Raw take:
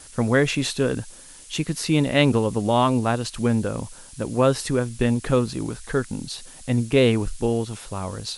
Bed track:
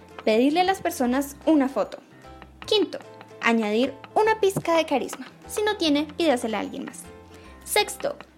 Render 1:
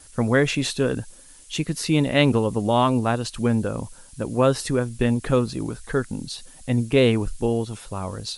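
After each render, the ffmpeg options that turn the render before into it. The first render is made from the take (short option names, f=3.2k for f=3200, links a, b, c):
-af "afftdn=nr=6:nf=-45"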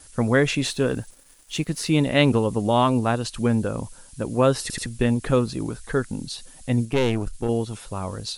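-filter_complex "[0:a]asettb=1/sr,asplit=3[a][b][c];[a]atrim=end=0.654[d];[b]atrim=start=0.65:end=1.92,asetpts=PTS-STARTPTS,afade=t=in:d=0.004:c=qsin,afade=t=out:st=1.266:d=0.004:c=qsin,aeval=exprs='sgn(val(0))*max(abs(val(0))-0.00316,0)':c=same[e];[c]atrim=start=1.916[f];[d][e]acrossfade=d=0.004:c1=hsin:c2=qsin[g];[g][f]acrossfade=d=0.004:c1=qsin:c2=hsin,asettb=1/sr,asplit=3[h][i][j];[h]atrim=end=6.854[k];[i]atrim=start=6.85:end=7.49,asetpts=PTS-STARTPTS,afade=t=in:d=0.004:c=qsin,afade=t=out:st=0.636:d=0.004:c=qsin,aeval=exprs='(tanh(5.62*val(0)+0.65)-tanh(0.65))/5.62':c=same[l];[j]atrim=start=7.486[m];[k][l]acrossfade=d=0.004:c1=hsin:c2=qsin[n];[n][m]acrossfade=d=0.004:c1=qsin:c2=hsin,asplit=4[o][p][q][r];[o]atrim=end=4.702[s];[p]atrim=start=4.618:end=4.702[t];[q]atrim=start=4.618:end=4.702[u];[r]atrim=start=4.858[v];[s][t]acrossfade=d=0.004:c1=hsin:c2=hsin[w];[w][u]acrossfade=d=0.004:c1=hsin:c2=hsin[x];[x][v]acrossfade=d=0.004:c1=hsin:c2=hsin"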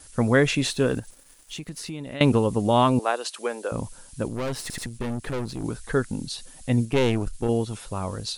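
-filter_complex "[0:a]asettb=1/sr,asplit=3[a][b][c];[a]atrim=end=0.994[d];[b]atrim=start=0.99:end=2.21,asetpts=PTS-STARTPTS,afade=t=in:d=0.004:c=qsin,afade=t=out:st=1.216:d=0.004:c=qsin,acompressor=threshold=-33dB:ratio=4:attack=3.2:release=140:knee=1:detection=peak[e];[c]atrim=start=2.206[f];[d][e]acrossfade=d=0.004:c1=hsin:c2=qsin[g];[g][f]acrossfade=d=0.004:c1=qsin:c2=hsin,asettb=1/sr,asplit=3[h][i][j];[h]atrim=end=2.994[k];[i]atrim=start=2.99:end=3.72,asetpts=PTS-STARTPTS,afade=t=in:d=0.004:c=qsin,afade=t=out:st=0.726:d=0.004:c=qsin,highpass=f=410:w=0.5412,highpass=f=410:w=1.3066[l];[j]atrim=start=3.716[m];[k][l]acrossfade=d=0.004:c1=hsin:c2=qsin[n];[n][m]acrossfade=d=0.004:c1=qsin:c2=hsin,asettb=1/sr,asplit=3[o][p][q];[o]atrim=end=4.284[r];[p]atrim=start=4.28:end=5.64,asetpts=PTS-STARTPTS,afade=t=in:d=0.004:c=qsin,afade=t=out:st=1.356:d=0.004:c=qsin,aeval=exprs='(tanh(20*val(0)+0.7)-tanh(0.7))/20':c=same[s];[q]atrim=start=5.636[t];[r][s]acrossfade=d=0.004:c1=hsin:c2=qsin[u];[u][t]acrossfade=d=0.004:c1=qsin:c2=hsin"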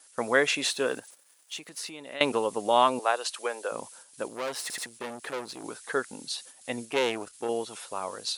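-af "agate=range=-7dB:threshold=-43dB:ratio=16:detection=peak,highpass=520"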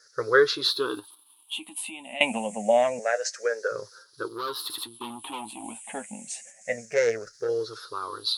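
-af "afftfilt=real='re*pow(10,24/40*sin(2*PI*(0.57*log(max(b,1)*sr/1024/100)/log(2)-(-0.27)*(pts-256)/sr)))':imag='im*pow(10,24/40*sin(2*PI*(0.57*log(max(b,1)*sr/1024/100)/log(2)-(-0.27)*(pts-256)/sr)))':win_size=1024:overlap=0.75,flanger=delay=8.5:depth=1.4:regen=49:speed=1.4:shape=triangular"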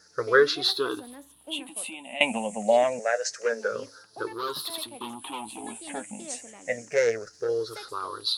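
-filter_complex "[1:a]volume=-22.5dB[a];[0:a][a]amix=inputs=2:normalize=0"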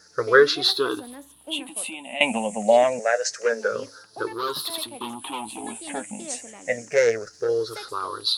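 -af "volume=4dB,alimiter=limit=-2dB:level=0:latency=1"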